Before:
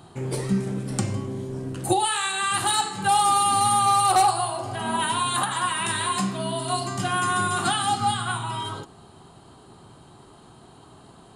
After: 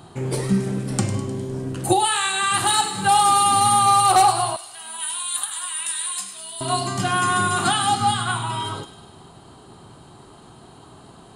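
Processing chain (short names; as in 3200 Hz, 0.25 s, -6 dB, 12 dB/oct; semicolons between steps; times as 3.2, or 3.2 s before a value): 4.56–6.61 differentiator; thin delay 0.102 s, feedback 60%, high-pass 2300 Hz, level -11 dB; gain +3.5 dB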